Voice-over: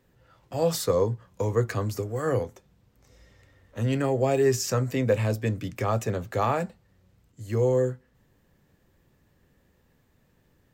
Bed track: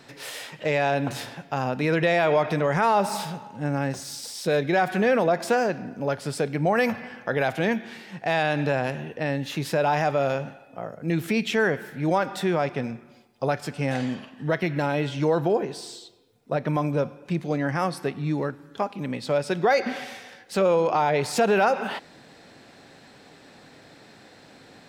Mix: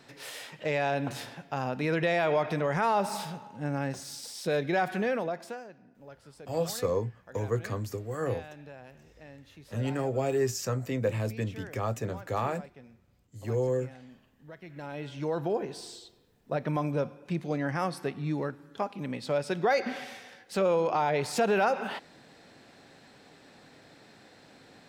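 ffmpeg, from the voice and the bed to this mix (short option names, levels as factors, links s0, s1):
-filter_complex "[0:a]adelay=5950,volume=0.531[s0];[1:a]volume=4.22,afade=t=out:st=4.84:d=0.8:silence=0.133352,afade=t=in:st=14.61:d=1.21:silence=0.125893[s1];[s0][s1]amix=inputs=2:normalize=0"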